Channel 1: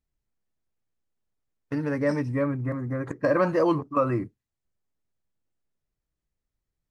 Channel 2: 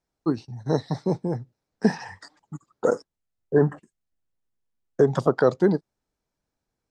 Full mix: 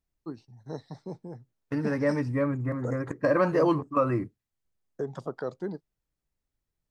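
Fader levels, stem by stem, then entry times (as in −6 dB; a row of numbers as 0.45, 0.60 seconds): −1.0, −14.5 decibels; 0.00, 0.00 seconds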